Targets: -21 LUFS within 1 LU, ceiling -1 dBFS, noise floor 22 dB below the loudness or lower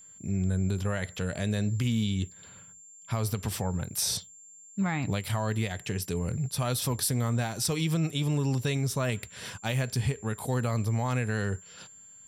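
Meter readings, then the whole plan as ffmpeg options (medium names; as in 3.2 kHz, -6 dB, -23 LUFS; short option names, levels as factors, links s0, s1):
steady tone 7.3 kHz; tone level -49 dBFS; loudness -30.0 LUFS; peak level -15.5 dBFS; loudness target -21.0 LUFS
-> -af "bandreject=f=7300:w=30"
-af "volume=2.82"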